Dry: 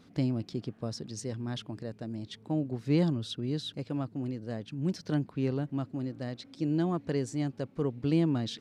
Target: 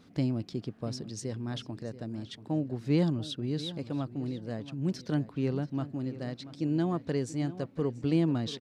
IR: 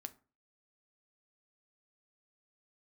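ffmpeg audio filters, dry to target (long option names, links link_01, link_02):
-filter_complex "[0:a]asplit=2[link_01][link_02];[link_02]adelay=684,lowpass=frequency=4300:poles=1,volume=-15dB,asplit=2[link_03][link_04];[link_04]adelay=684,lowpass=frequency=4300:poles=1,volume=0.29,asplit=2[link_05][link_06];[link_06]adelay=684,lowpass=frequency=4300:poles=1,volume=0.29[link_07];[link_01][link_03][link_05][link_07]amix=inputs=4:normalize=0"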